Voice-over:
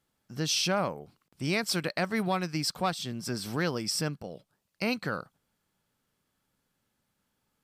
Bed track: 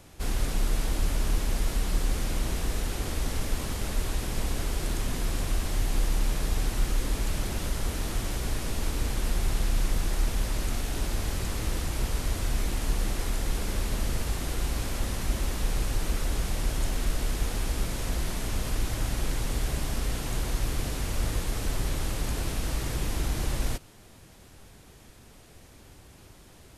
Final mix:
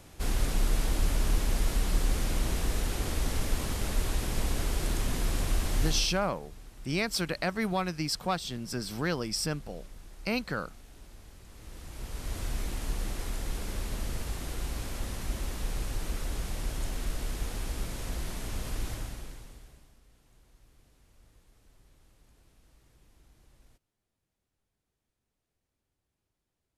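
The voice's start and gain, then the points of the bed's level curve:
5.45 s, -1.0 dB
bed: 5.88 s -0.5 dB
6.31 s -21.5 dB
11.44 s -21.5 dB
12.38 s -5.5 dB
18.91 s -5.5 dB
20.01 s -32.5 dB

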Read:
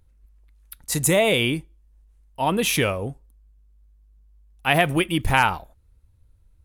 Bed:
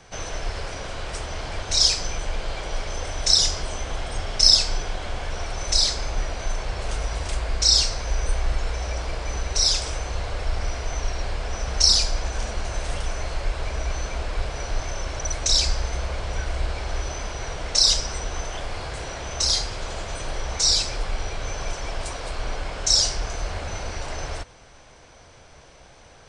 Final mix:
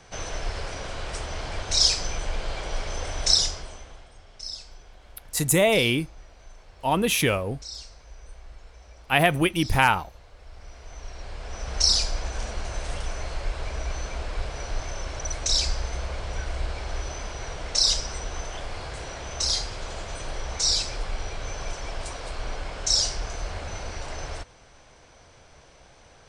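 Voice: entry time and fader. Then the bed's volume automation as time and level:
4.45 s, -1.0 dB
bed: 3.32 s -1.5 dB
4.15 s -21.5 dB
10.36 s -21.5 dB
11.80 s -3.5 dB

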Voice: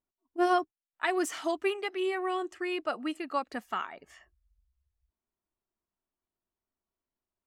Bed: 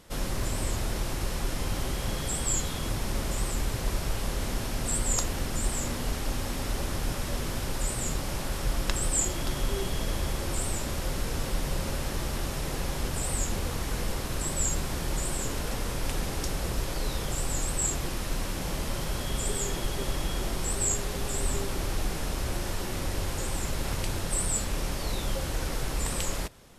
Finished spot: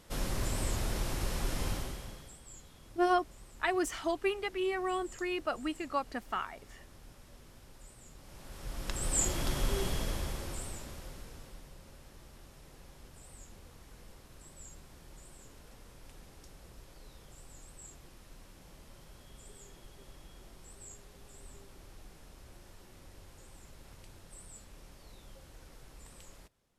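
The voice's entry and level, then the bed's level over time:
2.60 s, -2.0 dB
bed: 1.69 s -3.5 dB
2.40 s -24 dB
8.12 s -24 dB
9.23 s -2.5 dB
9.87 s -2.5 dB
11.75 s -23 dB

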